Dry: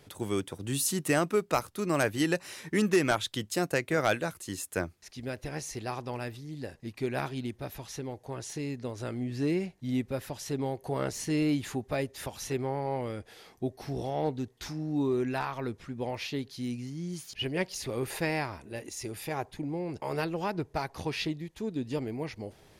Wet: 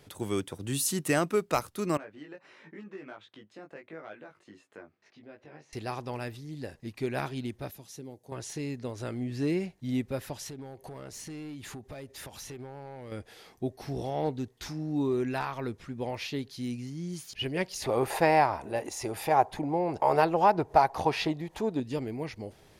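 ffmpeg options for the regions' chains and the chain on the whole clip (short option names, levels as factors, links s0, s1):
-filter_complex "[0:a]asettb=1/sr,asplit=3[s0][s1][s2];[s0]atrim=end=1.974[s3];[s1]atrim=start=1.97:end=5.73,asetpts=PTS-STARTPTS,afade=t=in:d=0.004:c=qsin,afade=t=out:st=3.756:d=0.004:c=qsin,acompressor=threshold=0.00631:ratio=2.5:attack=3.2:release=140:knee=1:detection=peak,flanger=delay=18.5:depth=2.1:speed=1.5,highpass=210,lowpass=2300[s4];[s2]atrim=start=5.726[s5];[s3][s4]acrossfade=d=0.004:c1=hsin:c2=qsin[s6];[s6][s5]acrossfade=d=0.004:c1=qsin:c2=hsin,asettb=1/sr,asplit=3[s7][s8][s9];[s7]atrim=end=7.714[s10];[s8]atrim=start=7.71:end=8.32,asetpts=PTS-STARTPTS,afade=t=in:d=0.004:c=qsin,afade=t=out:st=0.606:d=0.004:c=qsin,highpass=170,equalizer=f=1400:w=0.34:g=-13[s11];[s9]atrim=start=8.316[s12];[s10][s11]acrossfade=d=0.004:c1=hsin:c2=qsin[s13];[s13][s12]acrossfade=d=0.004:c1=qsin:c2=hsin,asettb=1/sr,asplit=3[s14][s15][s16];[s14]atrim=end=10.474[s17];[s15]atrim=start=10.47:end=13.12,asetpts=PTS-STARTPTS,afade=t=in:d=0.004:c=qsin,afade=t=out:st=2.646:d=0.004:c=qsin,acompressor=threshold=0.0112:ratio=6:attack=3.2:release=140:knee=1:detection=peak,aeval=exprs='clip(val(0),-1,0.0126)':c=same[s18];[s16]atrim=start=13.116[s19];[s17][s18]acrossfade=d=0.004:c1=hsin:c2=qsin[s20];[s20][s19]acrossfade=d=0.004:c1=qsin:c2=hsin,asettb=1/sr,asplit=3[s21][s22][s23];[s21]atrim=end=17.824[s24];[s22]atrim=start=17.82:end=21.8,asetpts=PTS-STARTPTS,afade=t=in:d=0.004:c=qsin,afade=t=out:st=3.976:d=0.004:c=qsin,equalizer=f=790:w=1:g=14.5,acompressor=mode=upward:threshold=0.0224:ratio=2.5:attack=3.2:release=140:knee=2.83:detection=peak[s25];[s23]atrim=start=21.796[s26];[s24][s25]acrossfade=d=0.004:c1=hsin:c2=qsin[s27];[s27][s26]acrossfade=d=0.004:c1=qsin:c2=hsin"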